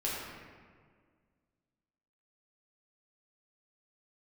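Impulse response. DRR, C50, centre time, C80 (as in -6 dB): -6.5 dB, -1.0 dB, 103 ms, 1.0 dB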